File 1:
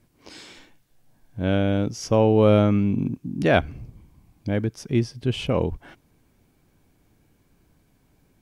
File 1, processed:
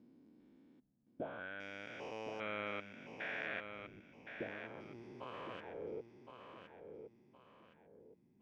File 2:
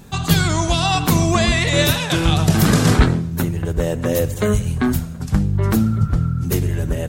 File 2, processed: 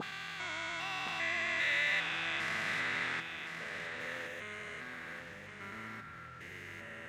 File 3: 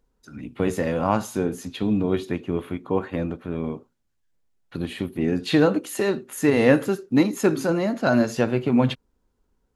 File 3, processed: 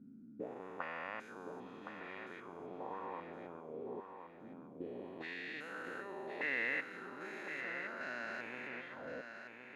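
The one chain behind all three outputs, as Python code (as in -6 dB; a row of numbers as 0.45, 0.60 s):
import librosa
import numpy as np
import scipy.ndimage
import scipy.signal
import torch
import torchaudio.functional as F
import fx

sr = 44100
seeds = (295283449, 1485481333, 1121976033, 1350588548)

p1 = fx.spec_steps(x, sr, hold_ms=400)
p2 = fx.auto_wah(p1, sr, base_hz=210.0, top_hz=2000.0, q=3.5, full_db=-22.5, direction='up')
p3 = p2 + fx.echo_feedback(p2, sr, ms=1066, feedback_pct=34, wet_db=-7.5, dry=0)
y = p3 * librosa.db_to_amplitude(-1.5)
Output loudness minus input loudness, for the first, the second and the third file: -24.0, -18.0, -20.5 LU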